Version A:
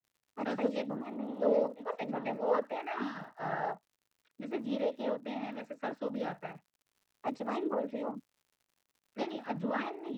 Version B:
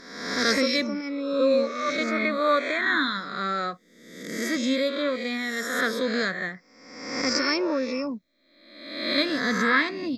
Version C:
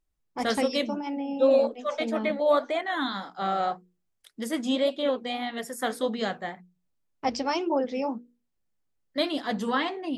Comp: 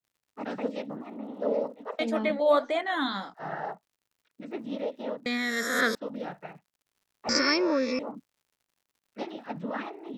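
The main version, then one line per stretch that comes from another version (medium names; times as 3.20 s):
A
1.99–3.34 s: from C
5.26–5.95 s: from B
7.29–7.99 s: from B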